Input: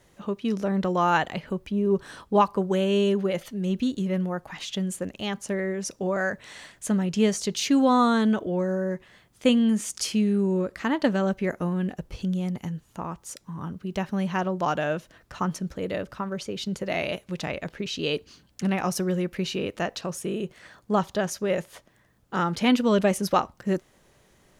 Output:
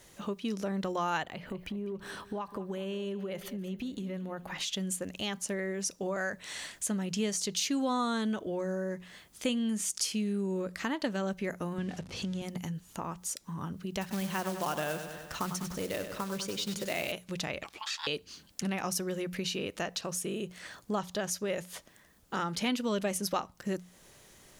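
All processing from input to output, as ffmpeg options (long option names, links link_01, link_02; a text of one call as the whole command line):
ffmpeg -i in.wav -filter_complex "[0:a]asettb=1/sr,asplit=3[link_01][link_02][link_03];[link_01]atrim=end=1.234[link_04];[link_02]atrim=start=1.23:end=4.59,asetpts=PTS-STARTPTS,afade=type=in:duration=0.004:curve=qsin,afade=type=out:start_time=3.356:duration=0.004:curve=qsin,equalizer=frequency=7100:width=0.56:gain=-9,acompressor=threshold=-31dB:ratio=4:attack=3.2:release=140:knee=1:detection=peak,aecho=1:1:200|400|600|800:0.141|0.0622|0.0273|0.012,atrim=end_sample=148176[link_05];[link_03]atrim=start=4.586[link_06];[link_04][link_05]acrossfade=duration=0.004:curve1=hsin:curve2=qsin[link_07];[link_07][link_06]acrossfade=duration=0.004:curve1=qsin:curve2=hsin,asettb=1/sr,asplit=3[link_08][link_09][link_10];[link_08]atrim=end=11.784[link_11];[link_09]atrim=start=11.78:end=12.42,asetpts=PTS-STARTPTS,afade=type=in:duration=0.004:curve=qsin,afade=type=out:start_time=0.636:duration=0.004:curve=qsin,aeval=exprs='val(0)+0.5*0.00708*sgn(val(0))':channel_layout=same,aeval=exprs='val(0)+0.00891*(sin(2*PI*50*n/s)+sin(2*PI*2*50*n/s)/2+sin(2*PI*3*50*n/s)/3+sin(2*PI*4*50*n/s)/4+sin(2*PI*5*50*n/s)/5)':channel_layout=same,highpass=110,lowpass=7000[link_12];[link_10]atrim=start=12.416[link_13];[link_11][link_12]acrossfade=duration=0.004:curve1=hsin:curve2=qsin[link_14];[link_14][link_13]acrossfade=duration=0.004:curve1=qsin:curve2=hsin,asettb=1/sr,asplit=3[link_15][link_16][link_17];[link_15]atrim=end=14.014[link_18];[link_16]atrim=start=14.01:end=17.12,asetpts=PTS-STARTPTS,afade=type=in:duration=0.004:curve=qsin,afade=type=out:start_time=3.106:duration=0.004:curve=qsin,acrusher=bits=4:mode=log:mix=0:aa=0.000001,aecho=1:1:98|196|294|392|490|588:0.316|0.168|0.0888|0.0471|0.025|0.0132,atrim=end_sample=137151[link_19];[link_17]atrim=start=17.116[link_20];[link_18][link_19]acrossfade=duration=0.004:curve1=hsin:curve2=qsin[link_21];[link_21][link_20]acrossfade=duration=0.004:curve1=qsin:curve2=hsin,asettb=1/sr,asplit=3[link_22][link_23][link_24];[link_22]atrim=end=17.634[link_25];[link_23]atrim=start=17.63:end=18.07,asetpts=PTS-STARTPTS,afade=type=in:duration=0.004:curve=qsin,afade=type=out:start_time=0.436:duration=0.004:curve=qsin,highpass=frequency=900:poles=1,afreqshift=-320,aeval=exprs='val(0)*sin(2*PI*980*n/s)':channel_layout=same[link_26];[link_24]atrim=start=18.066[link_27];[link_25][link_26]acrossfade=duration=0.004:curve1=hsin:curve2=qsin[link_28];[link_28][link_27]acrossfade=duration=0.004:curve1=qsin:curve2=hsin,highshelf=frequency=2900:gain=9.5,bandreject=frequency=60:width_type=h:width=6,bandreject=frequency=120:width_type=h:width=6,bandreject=frequency=180:width_type=h:width=6,acompressor=threshold=-37dB:ratio=2" out.wav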